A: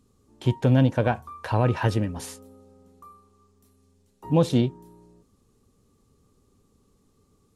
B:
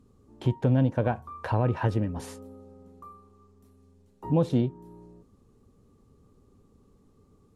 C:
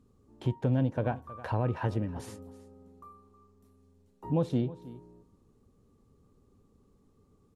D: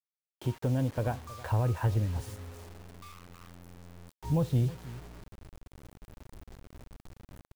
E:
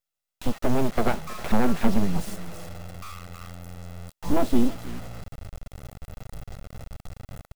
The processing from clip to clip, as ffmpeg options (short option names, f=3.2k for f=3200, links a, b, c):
-af "highshelf=f=2.1k:g=-11.5,acompressor=threshold=-36dB:ratio=1.5,volume=4dB"
-af "aecho=1:1:318:0.126,volume=-4.5dB"
-af "asubboost=boost=12:cutoff=79,acrusher=bits=7:mix=0:aa=0.000001,volume=-1dB"
-af "aecho=1:1:1.5:0.56,aeval=exprs='abs(val(0))':c=same,volume=8.5dB"